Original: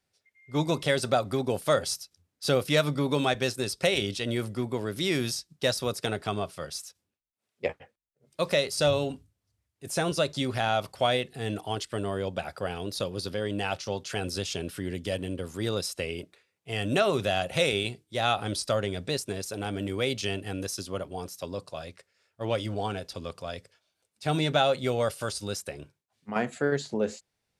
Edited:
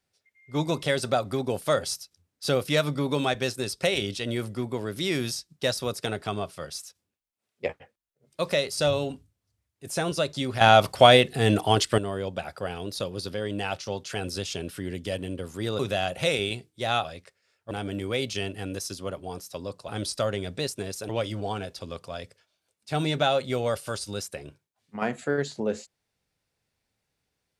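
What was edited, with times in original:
0:10.61–0:11.98: clip gain +10.5 dB
0:15.79–0:17.13: remove
0:18.38–0:19.59: swap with 0:21.76–0:22.43

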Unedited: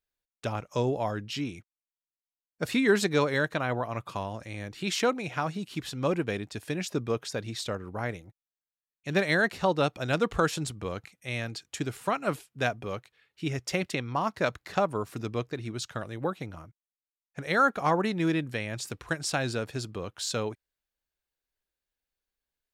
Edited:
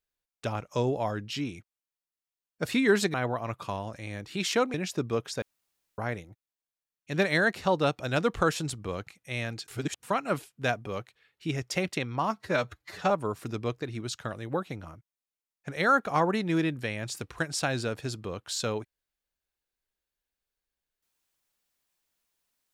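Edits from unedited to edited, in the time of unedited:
0:03.14–0:03.61: remove
0:05.21–0:06.71: remove
0:07.39–0:07.95: fill with room tone
0:11.65–0:12.00: reverse
0:14.28–0:14.81: time-stretch 1.5×

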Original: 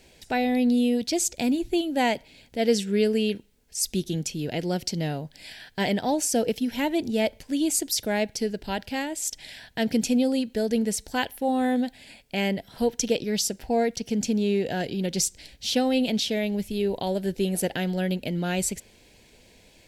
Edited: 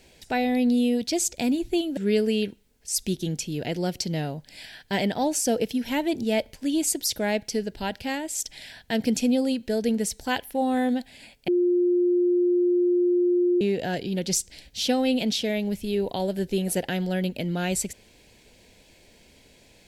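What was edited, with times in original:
0:01.97–0:02.84: remove
0:12.35–0:14.48: beep over 354 Hz −18 dBFS

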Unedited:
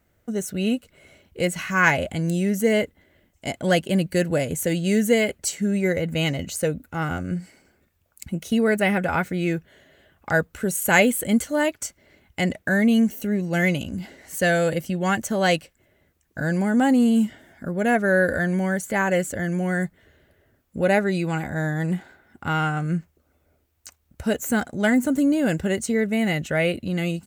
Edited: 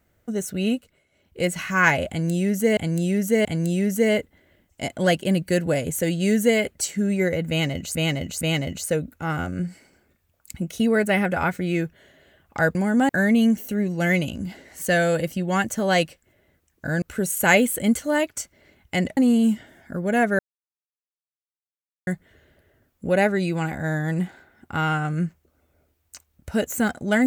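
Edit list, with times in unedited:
0:00.71–0:01.45: duck −18 dB, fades 0.34 s
0:02.09–0:02.77: repeat, 3 plays
0:06.13–0:06.59: repeat, 3 plays
0:10.47–0:12.62: swap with 0:16.55–0:16.89
0:18.11–0:19.79: silence

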